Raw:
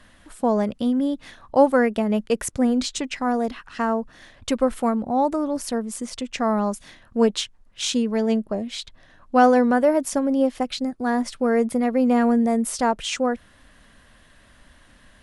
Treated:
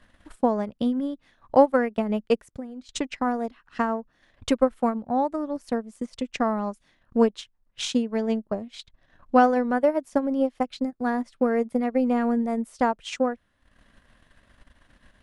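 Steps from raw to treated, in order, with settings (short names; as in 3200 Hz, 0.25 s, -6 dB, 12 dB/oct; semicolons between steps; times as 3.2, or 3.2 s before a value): high shelf 4900 Hz -7.5 dB; 2.36–2.89 compressor 3:1, threshold -36 dBFS, peak gain reduction 14.5 dB; transient shaper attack +7 dB, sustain -11 dB; gain -5 dB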